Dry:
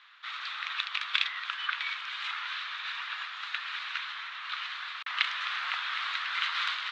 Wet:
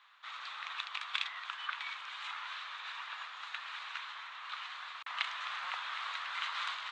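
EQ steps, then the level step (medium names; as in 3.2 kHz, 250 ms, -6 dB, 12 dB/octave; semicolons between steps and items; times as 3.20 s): high-order bell 2.7 kHz -9 dB 2.4 oct; +1.0 dB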